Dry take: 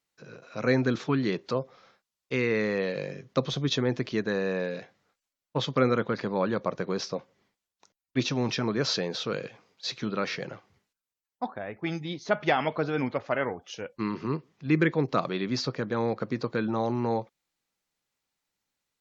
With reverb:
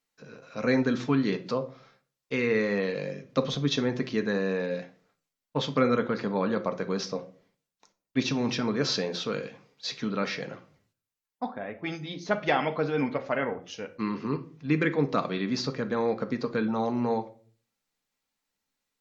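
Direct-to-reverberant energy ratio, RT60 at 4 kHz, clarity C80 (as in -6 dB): 6.0 dB, 0.30 s, 20.5 dB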